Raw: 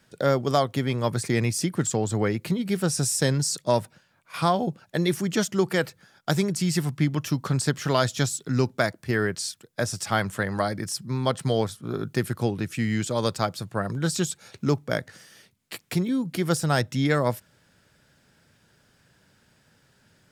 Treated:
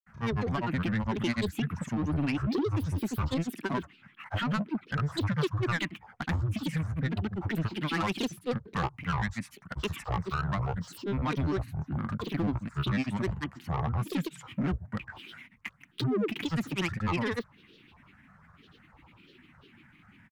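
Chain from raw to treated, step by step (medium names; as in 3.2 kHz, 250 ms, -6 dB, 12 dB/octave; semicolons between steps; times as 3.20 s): FFT filter 160 Hz 0 dB, 240 Hz +7 dB, 420 Hz -24 dB, 930 Hz +2 dB, 1.4 kHz -1 dB, 2.1 kHz +8 dB, 4.3 kHz -24 dB, 13 kHz -15 dB; in parallel at +2 dB: compression, threshold -36 dBFS, peak gain reduction 17.5 dB; on the sum: saturation -21.5 dBFS, distortion -11 dB; granulator, pitch spread up and down by 12 st; trim -2 dB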